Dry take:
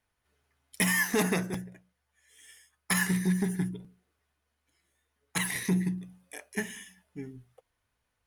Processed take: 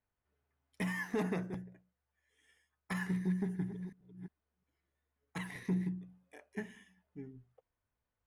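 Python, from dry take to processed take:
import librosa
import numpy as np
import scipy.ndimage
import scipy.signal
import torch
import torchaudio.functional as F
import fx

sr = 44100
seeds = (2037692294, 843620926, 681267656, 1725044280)

y = fx.reverse_delay(x, sr, ms=354, wet_db=-11.0, at=(3.22, 5.87))
y = fx.lowpass(y, sr, hz=1100.0, slope=6)
y = y * 10.0 ** (-6.5 / 20.0)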